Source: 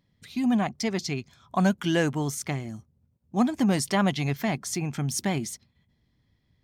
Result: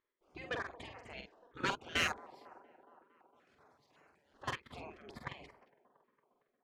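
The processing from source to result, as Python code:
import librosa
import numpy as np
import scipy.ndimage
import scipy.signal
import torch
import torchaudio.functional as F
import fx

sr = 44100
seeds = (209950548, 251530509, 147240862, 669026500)

y = fx.pre_emphasis(x, sr, coefficient=0.97, at=(2.13, 4.34), fade=0.02)
y = fx.spec_gate(y, sr, threshold_db=-20, keep='weak')
y = fx.env_lowpass(y, sr, base_hz=1300.0, full_db=-23.0)
y = fx.level_steps(y, sr, step_db=20)
y = 10.0 ** (-35.0 / 20.0) * np.tanh(y / 10.0 ** (-35.0 / 20.0))
y = y * (1.0 - 0.61 / 2.0 + 0.61 / 2.0 * np.cos(2.0 * np.pi * 2.5 * (np.arange(len(y)) / sr)))
y = fx.doubler(y, sr, ms=47.0, db=-5)
y = fx.echo_wet_bandpass(y, sr, ms=229, feedback_pct=71, hz=540.0, wet_db=-17)
y = fx.filter_held_notch(y, sr, hz=5.3, low_hz=730.0, high_hz=3600.0)
y = y * librosa.db_to_amplitude(14.0)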